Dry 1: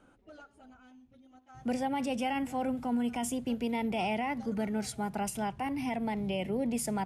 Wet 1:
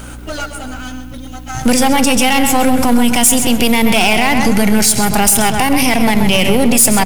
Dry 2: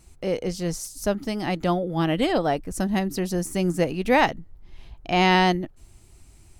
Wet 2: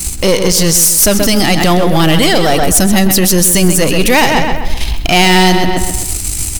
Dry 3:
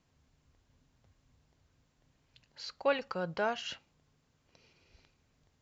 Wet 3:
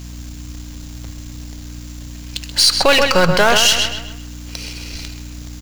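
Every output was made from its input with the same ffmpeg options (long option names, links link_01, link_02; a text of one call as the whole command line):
ffmpeg -i in.wav -filter_complex "[0:a]aeval=exprs='if(lt(val(0),0),0.447*val(0),val(0))':channel_layout=same,lowshelf=frequency=150:gain=5.5,asplit=2[link_01][link_02];[link_02]acompressor=threshold=-37dB:ratio=6,volume=0.5dB[link_03];[link_01][link_03]amix=inputs=2:normalize=0,aeval=exprs='val(0)+0.00282*(sin(2*PI*60*n/s)+sin(2*PI*2*60*n/s)/2+sin(2*PI*3*60*n/s)/3+sin(2*PI*4*60*n/s)/4+sin(2*PI*5*60*n/s)/5)':channel_layout=same,crystalizer=i=7:c=0,asoftclip=type=tanh:threshold=-14dB,asplit=2[link_04][link_05];[link_05]adelay=130,lowpass=frequency=3700:poles=1,volume=-8dB,asplit=2[link_06][link_07];[link_07]adelay=130,lowpass=frequency=3700:poles=1,volume=0.44,asplit=2[link_08][link_09];[link_09]adelay=130,lowpass=frequency=3700:poles=1,volume=0.44,asplit=2[link_10][link_11];[link_11]adelay=130,lowpass=frequency=3700:poles=1,volume=0.44,asplit=2[link_12][link_13];[link_13]adelay=130,lowpass=frequency=3700:poles=1,volume=0.44[link_14];[link_06][link_08][link_10][link_12][link_14]amix=inputs=5:normalize=0[link_15];[link_04][link_15]amix=inputs=2:normalize=0,alimiter=level_in=21dB:limit=-1dB:release=50:level=0:latency=1,volume=-1dB" out.wav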